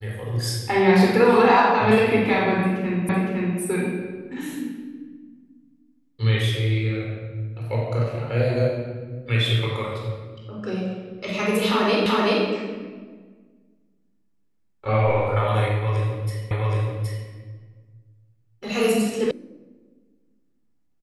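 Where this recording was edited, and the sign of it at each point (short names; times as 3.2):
3.09 repeat of the last 0.51 s
12.06 repeat of the last 0.38 s
16.51 repeat of the last 0.77 s
19.31 sound cut off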